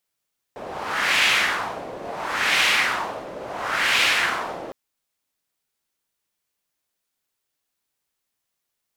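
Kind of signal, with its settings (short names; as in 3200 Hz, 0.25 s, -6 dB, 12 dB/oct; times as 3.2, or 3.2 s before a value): wind-like swept noise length 4.16 s, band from 550 Hz, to 2500 Hz, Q 1.9, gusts 3, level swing 16.5 dB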